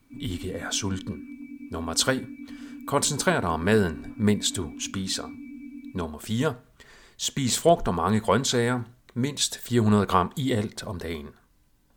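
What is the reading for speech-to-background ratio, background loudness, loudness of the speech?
15.5 dB, −41.5 LKFS, −26.0 LKFS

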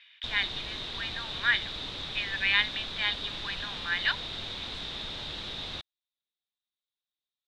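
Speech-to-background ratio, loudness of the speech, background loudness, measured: 6.0 dB, −30.0 LKFS, −36.0 LKFS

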